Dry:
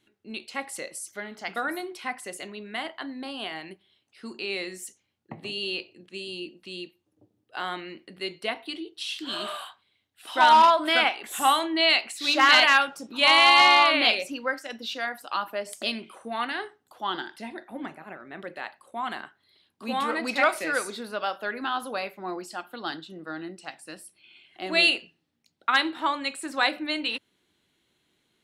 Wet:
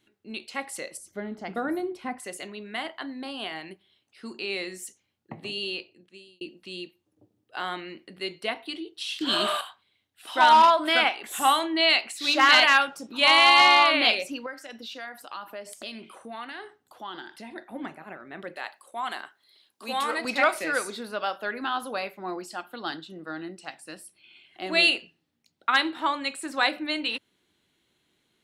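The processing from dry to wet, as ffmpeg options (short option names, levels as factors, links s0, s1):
-filter_complex "[0:a]asettb=1/sr,asplit=3[s0][s1][s2];[s0]atrim=end=0.974[s3];[s1]atrim=start=0.97:end=2.2,asetpts=PTS-STARTPTS,afade=t=in:d=0.004:c=qsin,afade=t=out:st=1.226:d=0.004:c=qsin,tiltshelf=f=750:g=9.5[s4];[s2]atrim=start=2.196[s5];[s3][s4]acrossfade=d=0.004:c1=hsin:c2=qsin[s6];[s6][s5]acrossfade=d=0.004:c1=qsin:c2=hsin,asettb=1/sr,asplit=3[s7][s8][s9];[s7]atrim=end=14.464[s10];[s8]atrim=start=14.46:end=17.56,asetpts=PTS-STARTPTS,afade=t=in:d=0.004:c=qsin,afade=t=out:st=3.096:d=0.004:c=qsin,acompressor=threshold=0.01:ratio=2:attack=3.2:release=140:knee=1:detection=peak[s11];[s9]atrim=start=17.556[s12];[s10][s11]acrossfade=d=0.004:c1=hsin:c2=qsin[s13];[s13][s12]acrossfade=d=0.004:c1=qsin:c2=hsin,asettb=1/sr,asplit=3[s14][s15][s16];[s14]atrim=end=18.564[s17];[s15]atrim=start=18.56:end=20.25,asetpts=PTS-STARTPTS,afade=t=in:d=0.004:c=qsin,afade=t=out:st=1.686:d=0.004:c=qsin,bass=f=250:g=-14,treble=f=4000:g=7[s18];[s16]atrim=start=20.246[s19];[s17][s18]acrossfade=d=0.004:c1=hsin:c2=qsin[s20];[s20][s19]acrossfade=d=0.004:c1=qsin:c2=hsin,asplit=4[s21][s22][s23][s24];[s21]atrim=end=6.41,asetpts=PTS-STARTPTS,afade=t=out:st=5.58:d=0.83[s25];[s22]atrim=start=6.41:end=9.212,asetpts=PTS-STARTPTS,afade=t=in:d=0.004:c=hsin[s26];[s23]atrim=start=9.208:end=9.612,asetpts=PTS-STARTPTS,volume=2.37[s27];[s24]atrim=start=9.608[s28];[s25][s26]concat=n=2:v=0:a=1[s29];[s29][s27]acrossfade=d=0.004:c1=hsin:c2=hsin[s30];[s30][s28]acrossfade=d=0.004:c1=hsin:c2=hsin"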